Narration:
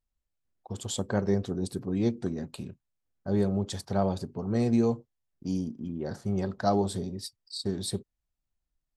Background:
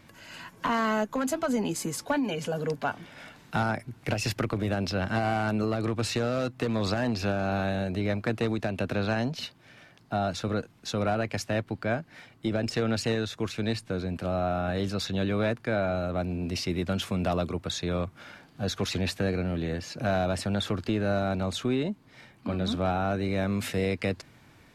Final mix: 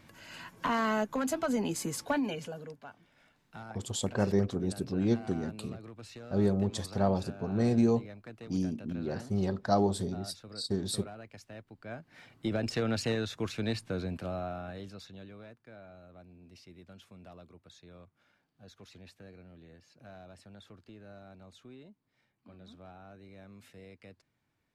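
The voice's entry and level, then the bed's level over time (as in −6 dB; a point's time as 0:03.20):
3.05 s, −1.0 dB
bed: 0:02.25 −3 dB
0:02.81 −19 dB
0:11.75 −19 dB
0:12.28 −3.5 dB
0:14.05 −3.5 dB
0:15.48 −24 dB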